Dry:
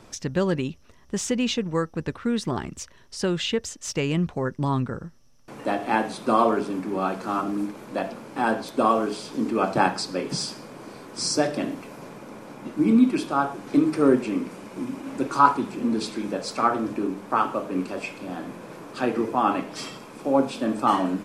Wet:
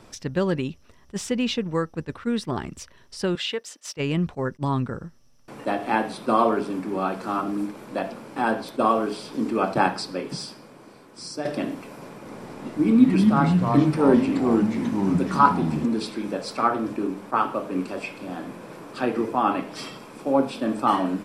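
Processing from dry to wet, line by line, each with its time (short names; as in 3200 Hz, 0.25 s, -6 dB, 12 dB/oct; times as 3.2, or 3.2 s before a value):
3.35–3.97 Bessel high-pass 500 Hz
9.94–11.45 fade out quadratic, to -9 dB
12.16–15.86 echoes that change speed 91 ms, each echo -3 st, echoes 3
whole clip: notch 6500 Hz, Q 16; dynamic EQ 7100 Hz, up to -5 dB, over -50 dBFS, Q 1.9; attack slew limiter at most 560 dB/s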